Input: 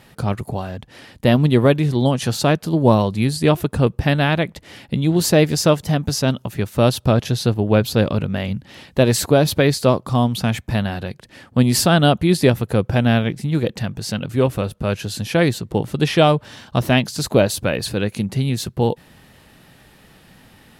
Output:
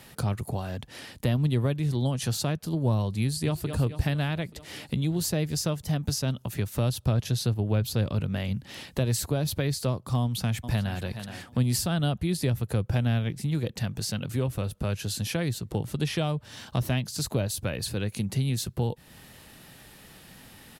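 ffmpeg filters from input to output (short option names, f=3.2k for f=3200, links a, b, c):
-filter_complex "[0:a]asplit=2[a][b];[b]afade=t=in:st=3.23:d=0.01,afade=t=out:st=3.65:d=0.01,aecho=0:1:220|440|660|880|1100|1320|1540:0.266073|0.159644|0.0957861|0.0574717|0.034483|0.0206898|0.0124139[c];[a][c]amix=inputs=2:normalize=0,asplit=2[d][e];[e]afade=t=in:st=10.21:d=0.01,afade=t=out:st=11.01:d=0.01,aecho=0:1:420|840|1260:0.177828|0.0533484|0.0160045[f];[d][f]amix=inputs=2:normalize=0,highshelf=f=4.3k:g=8.5,acrossover=split=130[g][h];[h]acompressor=threshold=-29dB:ratio=3[i];[g][i]amix=inputs=2:normalize=0,volume=-3dB"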